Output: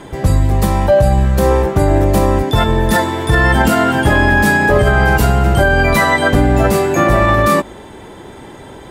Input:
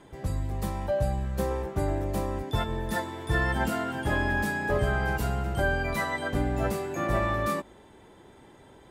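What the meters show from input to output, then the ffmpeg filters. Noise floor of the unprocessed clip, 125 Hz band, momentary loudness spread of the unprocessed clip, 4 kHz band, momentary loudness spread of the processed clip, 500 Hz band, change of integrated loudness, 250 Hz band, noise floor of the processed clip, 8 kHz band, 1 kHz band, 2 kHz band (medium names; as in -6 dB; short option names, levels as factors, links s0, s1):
-53 dBFS, +16.5 dB, 5 LU, +16.5 dB, 3 LU, +16.5 dB, +16.5 dB, +16.5 dB, -35 dBFS, +17.0 dB, +16.5 dB, +16.0 dB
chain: -af "alimiter=level_in=10:limit=0.891:release=50:level=0:latency=1,volume=0.841"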